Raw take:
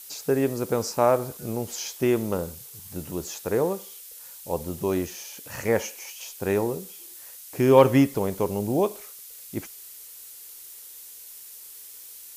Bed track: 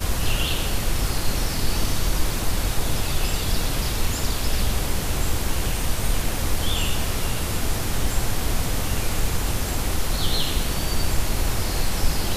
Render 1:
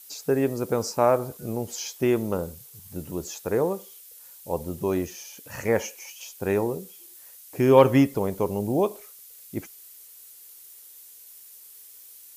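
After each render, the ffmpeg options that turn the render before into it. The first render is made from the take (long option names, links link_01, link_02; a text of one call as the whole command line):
ffmpeg -i in.wav -af "afftdn=noise_reduction=6:noise_floor=-44" out.wav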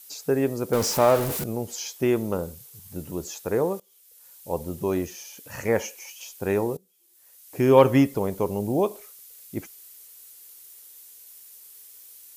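ffmpeg -i in.wav -filter_complex "[0:a]asettb=1/sr,asplit=3[link_01][link_02][link_03];[link_01]atrim=end=0.734[link_04];[link_02]atrim=start=0.73:end=1.44,asetpts=PTS-STARTPTS,afade=type=in:duration=0.004:curve=qsin,afade=type=out:start_time=0.706:duration=0.004:curve=qsin,aeval=exprs='val(0)+0.5*0.0596*sgn(val(0))':channel_layout=same[link_05];[link_03]atrim=start=1.436[link_06];[link_04][link_05]acrossfade=duration=0.004:curve1=hsin:curve2=qsin[link_07];[link_07][link_06]acrossfade=duration=0.004:curve1=qsin:curve2=hsin,asplit=3[link_08][link_09][link_10];[link_08]atrim=end=3.8,asetpts=PTS-STARTPTS,afade=type=out:start_time=3.796:duration=0.004:curve=hsin:silence=0.0891251[link_11];[link_09]atrim=start=3.8:end=6.77,asetpts=PTS-STARTPTS,afade=type=in:duration=0.72:silence=0.0891251,afade=type=out:start_time=2.966:duration=0.004:curve=hsin:silence=0.0707946[link_12];[link_10]atrim=start=6.77,asetpts=PTS-STARTPTS,afade=type=in:duration=0.8:curve=qua:silence=0.0707946[link_13];[link_11][link_12][link_13]concat=n=3:v=0:a=1" out.wav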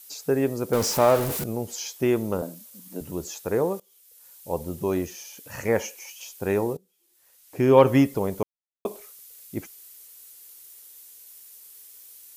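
ffmpeg -i in.wav -filter_complex "[0:a]asettb=1/sr,asplit=3[link_01][link_02][link_03];[link_01]atrim=end=2.424[link_04];[link_02]atrim=start=2.42:end=3.01,asetpts=PTS-STARTPTS,afade=type=in:duration=0.004:curve=qsin,afade=type=out:start_time=0.586:duration=0.004:curve=qsin,afreqshift=90[link_05];[link_03]atrim=start=3.006[link_06];[link_04][link_05]acrossfade=duration=0.004:curve1=hsin:curve2=qsin[link_07];[link_07][link_06]acrossfade=duration=0.004:curve1=qsin:curve2=hsin,asettb=1/sr,asplit=3[link_08][link_09][link_10];[link_08]atrim=end=6.734[link_11];[link_09]atrim=start=6.73:end=7.87,asetpts=PTS-STARTPTS,afade=type=in:duration=0.004:curve=qsin,afade=type=out:start_time=1.136:duration=0.004:curve=qsin,highshelf=frequency=5900:gain=-6.5[link_12];[link_10]atrim=start=7.866[link_13];[link_11][link_12]acrossfade=duration=0.004:curve1=hsin:curve2=qsin[link_14];[link_14][link_13]acrossfade=duration=0.004:curve1=qsin:curve2=hsin,asplit=3[link_15][link_16][link_17];[link_15]atrim=end=8.43,asetpts=PTS-STARTPTS,afade=type=out:start_time=8.426:duration=0.004:curve=hsin[link_18];[link_16]atrim=start=8.43:end=8.85,asetpts=PTS-STARTPTS,volume=0[link_19];[link_17]atrim=start=8.85,asetpts=PTS-STARTPTS,afade=type=in:duration=0.004:curve=hsin[link_20];[link_18][link_19][link_20]concat=n=3:v=0:a=1" out.wav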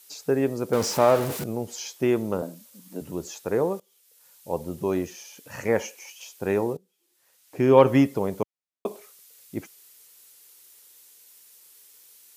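ffmpeg -i in.wav -af "highpass=100,highshelf=frequency=9200:gain=-8.5" out.wav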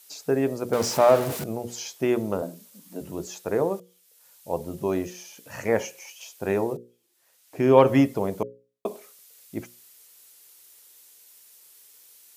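ffmpeg -i in.wav -af "equalizer=frequency=660:width_type=o:width=0.22:gain=4.5,bandreject=frequency=60:width_type=h:width=6,bandreject=frequency=120:width_type=h:width=6,bandreject=frequency=180:width_type=h:width=6,bandreject=frequency=240:width_type=h:width=6,bandreject=frequency=300:width_type=h:width=6,bandreject=frequency=360:width_type=h:width=6,bandreject=frequency=420:width_type=h:width=6,bandreject=frequency=480:width_type=h:width=6,bandreject=frequency=540:width_type=h:width=6" out.wav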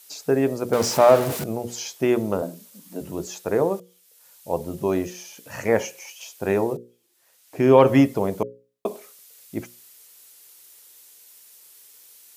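ffmpeg -i in.wav -af "volume=3dB,alimiter=limit=-2dB:level=0:latency=1" out.wav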